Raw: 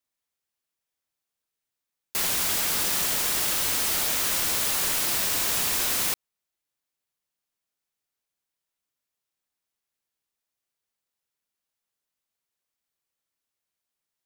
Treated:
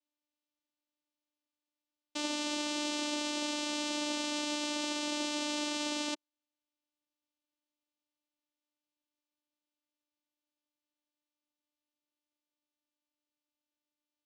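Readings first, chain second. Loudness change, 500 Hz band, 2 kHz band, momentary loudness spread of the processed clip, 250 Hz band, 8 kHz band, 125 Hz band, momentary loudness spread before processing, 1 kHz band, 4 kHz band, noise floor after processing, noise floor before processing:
-11.5 dB, -1.0 dB, -8.0 dB, 2 LU, +6.5 dB, -14.0 dB, under -20 dB, 2 LU, -5.0 dB, -6.0 dB, under -85 dBFS, under -85 dBFS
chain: static phaser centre 400 Hz, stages 6; vocoder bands 4, saw 297 Hz; trim -3 dB

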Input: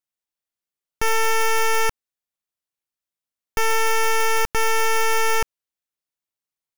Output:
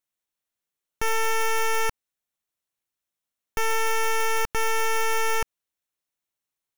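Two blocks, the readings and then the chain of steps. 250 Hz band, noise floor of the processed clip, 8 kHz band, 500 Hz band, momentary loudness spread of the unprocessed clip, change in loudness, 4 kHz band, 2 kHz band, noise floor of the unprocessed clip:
-4.0 dB, under -85 dBFS, -4.5 dB, -4.5 dB, 6 LU, -4.5 dB, -5.0 dB, -4.5 dB, under -85 dBFS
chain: band-stop 4.8 kHz, Q 11; peak limiter -23 dBFS, peak gain reduction 7 dB; trim +2.5 dB

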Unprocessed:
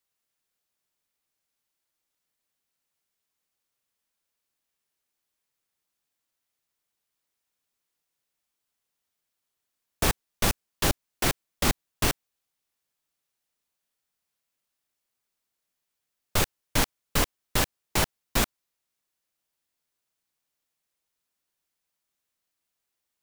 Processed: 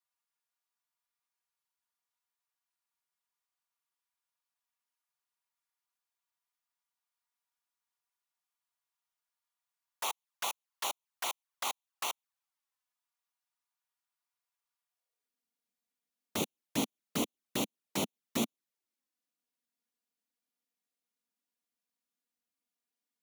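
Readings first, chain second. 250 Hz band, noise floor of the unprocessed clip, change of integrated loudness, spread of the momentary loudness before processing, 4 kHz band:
-4.5 dB, -83 dBFS, -9.0 dB, 0 LU, -8.5 dB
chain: touch-sensitive flanger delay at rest 4.2 ms, full sweep at -25.5 dBFS; high-pass sweep 960 Hz -> 230 Hz, 14.86–15.39 s; trim -6.5 dB

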